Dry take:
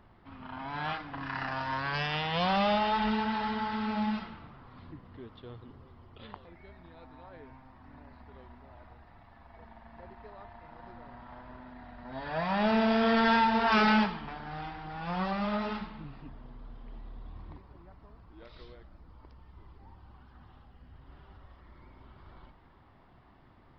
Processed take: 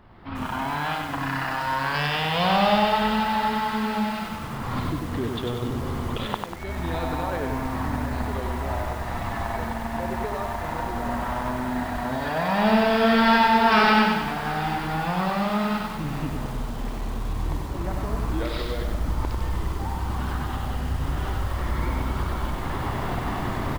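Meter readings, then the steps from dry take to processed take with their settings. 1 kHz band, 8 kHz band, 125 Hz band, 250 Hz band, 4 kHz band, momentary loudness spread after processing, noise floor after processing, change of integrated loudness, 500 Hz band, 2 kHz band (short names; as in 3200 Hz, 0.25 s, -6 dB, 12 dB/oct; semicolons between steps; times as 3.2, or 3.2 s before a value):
+8.5 dB, n/a, +14.0 dB, +7.5 dB, +8.0 dB, 11 LU, -32 dBFS, +4.0 dB, +8.5 dB, +8.0 dB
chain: recorder AGC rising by 30 dB/s; on a send: feedback echo 0.726 s, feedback 40%, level -18 dB; on the sum: lo-fi delay 96 ms, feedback 55%, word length 8-bit, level -3.5 dB; gain +5.5 dB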